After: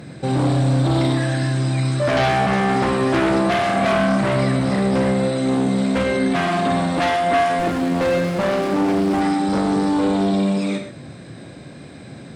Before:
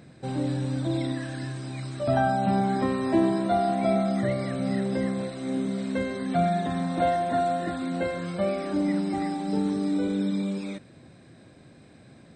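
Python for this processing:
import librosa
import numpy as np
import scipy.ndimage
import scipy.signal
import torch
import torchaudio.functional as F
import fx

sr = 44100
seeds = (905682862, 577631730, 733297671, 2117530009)

p1 = fx.fold_sine(x, sr, drive_db=15, ceiling_db=-11.0)
p2 = x + F.gain(torch.from_numpy(p1), -9.0).numpy()
p3 = scipy.signal.sosfilt(scipy.signal.butter(2, 59.0, 'highpass', fs=sr, output='sos'), p2)
p4 = fx.rev_gated(p3, sr, seeds[0], gate_ms=150, shape='flat', drr_db=4.5)
y = fx.running_max(p4, sr, window=9, at=(7.59, 9.21))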